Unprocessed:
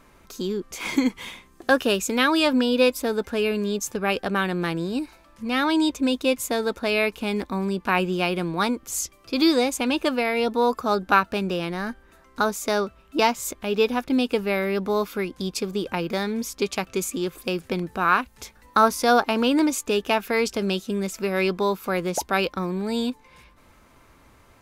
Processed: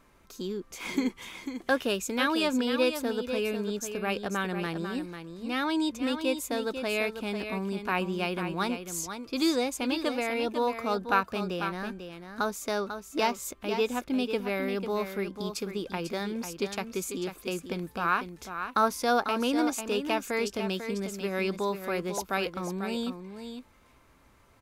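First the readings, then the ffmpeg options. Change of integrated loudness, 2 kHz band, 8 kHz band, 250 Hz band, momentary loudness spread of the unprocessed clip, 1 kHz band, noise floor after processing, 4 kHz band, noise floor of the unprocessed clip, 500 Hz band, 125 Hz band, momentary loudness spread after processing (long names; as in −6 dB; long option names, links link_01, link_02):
−6.5 dB, −6.5 dB, −6.5 dB, −6.5 dB, 9 LU, −6.5 dB, −60 dBFS, −6.5 dB, −55 dBFS, −6.5 dB, −6.5 dB, 9 LU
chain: -af "aecho=1:1:495:0.376,volume=-7dB"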